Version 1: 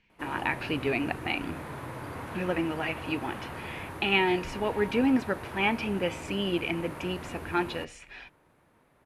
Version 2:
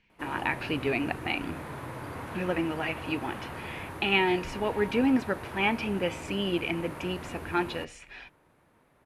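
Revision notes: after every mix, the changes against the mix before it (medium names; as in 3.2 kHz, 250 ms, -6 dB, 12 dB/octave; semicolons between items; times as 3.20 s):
no change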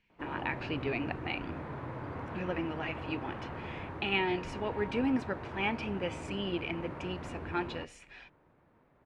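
speech -6.0 dB; background: add tape spacing loss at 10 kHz 28 dB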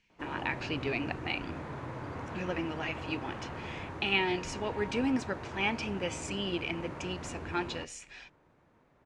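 master: add peaking EQ 6.8 kHz +14 dB 1.3 oct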